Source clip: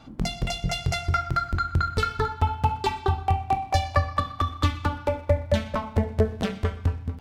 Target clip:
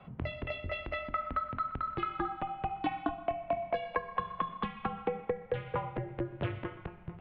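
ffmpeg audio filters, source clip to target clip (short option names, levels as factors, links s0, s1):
-af "acompressor=threshold=0.0562:ratio=6,highpass=f=160:t=q:w=0.5412,highpass=f=160:t=q:w=1.307,lowpass=f=3000:t=q:w=0.5176,lowpass=f=3000:t=q:w=0.7071,lowpass=f=3000:t=q:w=1.932,afreqshift=-89,volume=0.75"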